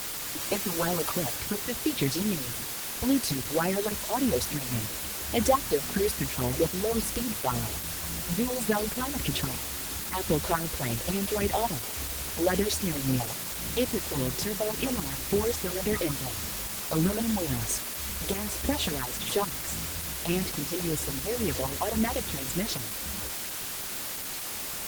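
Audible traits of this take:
phaser sweep stages 4, 3.6 Hz, lowest notch 170–1,500 Hz
tremolo saw up 1.8 Hz, depth 65%
a quantiser's noise floor 6 bits, dither triangular
Opus

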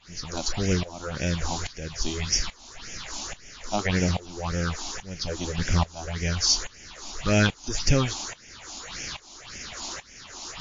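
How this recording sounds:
a quantiser's noise floor 6 bits, dither triangular
phaser sweep stages 6, 1.8 Hz, lowest notch 120–1,100 Hz
tremolo saw up 1.2 Hz, depth 95%
MP3

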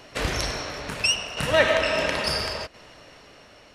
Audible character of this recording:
tremolo saw down 0.73 Hz, depth 55%

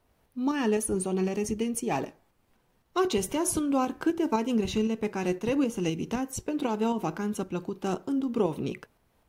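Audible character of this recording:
tremolo saw up 3.9 Hz, depth 40%

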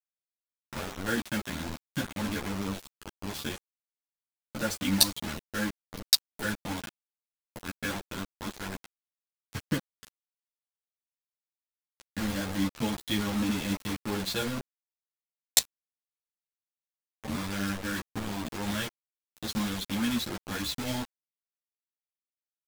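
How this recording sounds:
a quantiser's noise floor 6 bits, dither none
a shimmering, thickened sound

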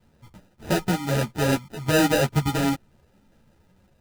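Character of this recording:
phaser sweep stages 12, 0.66 Hz, lowest notch 700–1,700 Hz
aliases and images of a low sample rate 1,100 Hz, jitter 0%
a shimmering, thickened sound

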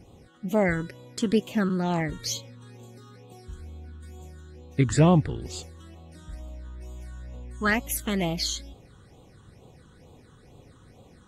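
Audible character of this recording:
phaser sweep stages 8, 2.2 Hz, lowest notch 660–1,700 Hz
AAC

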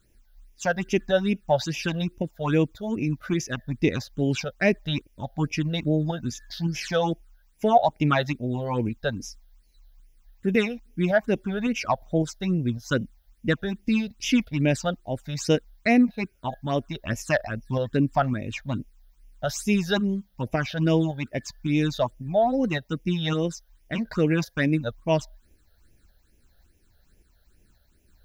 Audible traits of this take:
tremolo saw up 1.8 Hz, depth 35%
a quantiser's noise floor 12 bits, dither triangular
phaser sweep stages 8, 2.4 Hz, lowest notch 300–1,300 Hz

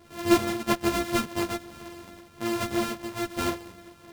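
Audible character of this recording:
a buzz of ramps at a fixed pitch in blocks of 128 samples
tremolo triangle 1.2 Hz, depth 65%
a shimmering, thickened sound

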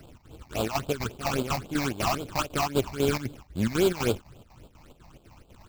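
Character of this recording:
a buzz of ramps at a fixed pitch in blocks of 8 samples
chopped level 4 Hz, depth 65%, duty 70%
aliases and images of a low sample rate 1,900 Hz, jitter 20%
phaser sweep stages 8, 3.7 Hz, lowest notch 410–1,900 Hz

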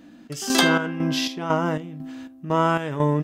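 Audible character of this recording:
chopped level 2 Hz, depth 60%, duty 55%

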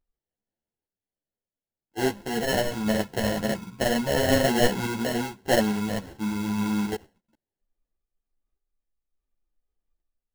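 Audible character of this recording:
sample-and-hold tremolo
aliases and images of a low sample rate 1,200 Hz, jitter 0%
a shimmering, thickened sound

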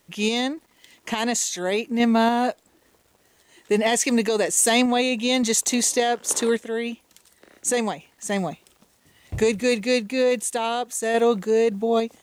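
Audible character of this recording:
a quantiser's noise floor 10 bits, dither none
sample-and-hold tremolo 3.5 Hz

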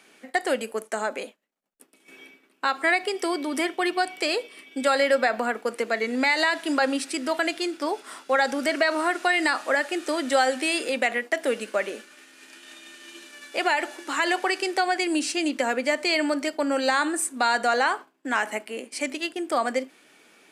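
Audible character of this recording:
background noise floor −61 dBFS
spectral slope −1.0 dB per octave

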